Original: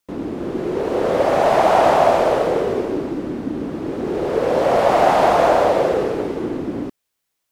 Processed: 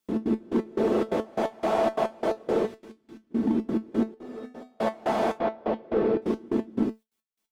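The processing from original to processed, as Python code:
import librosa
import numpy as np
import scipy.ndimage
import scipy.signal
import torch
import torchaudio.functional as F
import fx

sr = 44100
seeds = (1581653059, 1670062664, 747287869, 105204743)

y = fx.tone_stack(x, sr, knobs='5-5-5', at=(2.65, 3.3), fade=0.02)
y = fx.rider(y, sr, range_db=4, speed_s=0.5)
y = fx.small_body(y, sr, hz=(230.0, 330.0, 3400.0), ring_ms=50, db=10)
y = fx.step_gate(y, sr, bpm=175, pattern='xx.x..x..x', floor_db=-24.0, edge_ms=4.5)
y = np.clip(10.0 ** (9.0 / 20.0) * y, -1.0, 1.0) / 10.0 ** (9.0 / 20.0)
y = fx.comb_fb(y, sr, f0_hz=250.0, decay_s=0.38, harmonics='odd', damping=0.0, mix_pct=90, at=(4.14, 4.8))
y = fx.air_absorb(y, sr, metres=250.0, at=(5.37, 6.22))
y = fx.comb_fb(y, sr, f0_hz=220.0, decay_s=0.17, harmonics='all', damping=0.0, mix_pct=80)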